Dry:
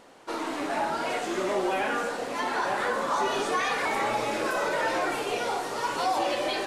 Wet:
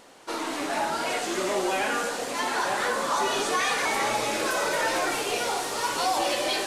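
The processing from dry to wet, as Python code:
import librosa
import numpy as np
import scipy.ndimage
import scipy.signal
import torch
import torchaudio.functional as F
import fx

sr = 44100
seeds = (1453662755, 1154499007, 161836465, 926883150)

y = fx.high_shelf(x, sr, hz=2900.0, db=7.5)
y = fx.dmg_noise_colour(y, sr, seeds[0], colour='pink', level_db=-58.0, at=(4.33, 6.33), fade=0.02)
y = fx.echo_wet_highpass(y, sr, ms=227, feedback_pct=84, hz=4700.0, wet_db=-5.5)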